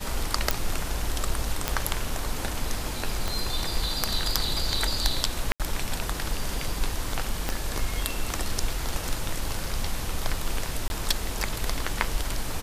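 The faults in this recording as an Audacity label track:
0.510000	0.510000	pop
1.680000	1.680000	pop -7 dBFS
3.280000	3.280000	pop
5.520000	5.600000	gap 77 ms
7.490000	7.490000	pop -11 dBFS
10.880000	10.900000	gap 21 ms

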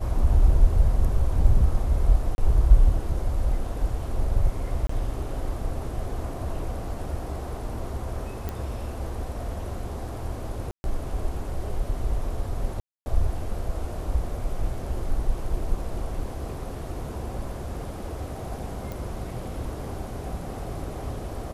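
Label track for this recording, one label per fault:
2.350000	2.380000	gap 31 ms
4.870000	4.890000	gap 24 ms
8.490000	8.490000	pop -17 dBFS
10.710000	10.840000	gap 0.131 s
12.800000	13.060000	gap 0.26 s
18.920000	18.920000	pop

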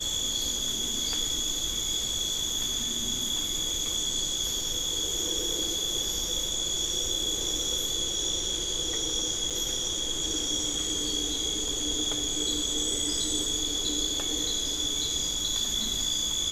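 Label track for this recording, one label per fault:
9.500000	9.510000	gap 6.6 ms

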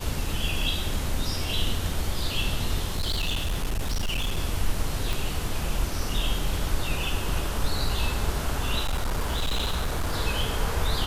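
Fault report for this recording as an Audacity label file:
2.880000	4.390000	clipped -22.5 dBFS
5.130000	5.130000	pop
8.830000	10.150000	clipped -22 dBFS

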